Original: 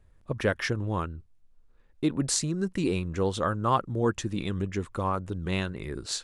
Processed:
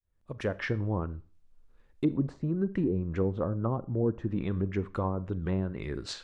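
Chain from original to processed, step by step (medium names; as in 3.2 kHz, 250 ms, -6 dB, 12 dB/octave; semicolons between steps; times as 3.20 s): fade-in on the opening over 0.82 s; low-pass that closes with the level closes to 420 Hz, closed at -22.5 dBFS; Schroeder reverb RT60 0.39 s, combs from 28 ms, DRR 16.5 dB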